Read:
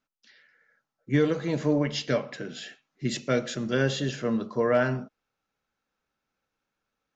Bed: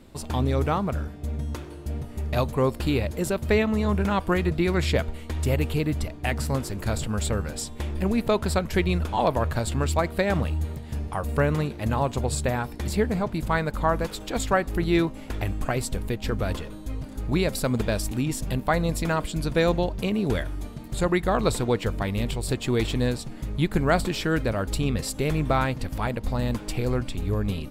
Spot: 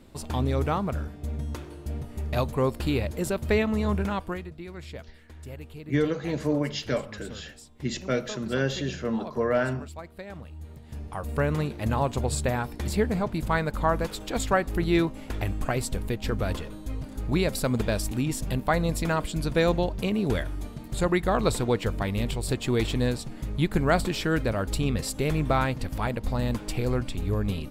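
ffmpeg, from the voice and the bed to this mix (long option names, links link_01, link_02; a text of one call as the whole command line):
ffmpeg -i stem1.wav -i stem2.wav -filter_complex "[0:a]adelay=4800,volume=-1.5dB[link_01];[1:a]volume=14dB,afade=type=out:start_time=3.93:duration=0.56:silence=0.177828,afade=type=in:start_time=10.51:duration=1.22:silence=0.158489[link_02];[link_01][link_02]amix=inputs=2:normalize=0" out.wav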